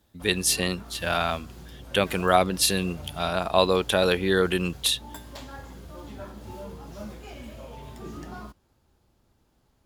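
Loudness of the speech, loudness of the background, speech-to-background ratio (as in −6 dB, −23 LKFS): −24.0 LKFS, −43.0 LKFS, 19.0 dB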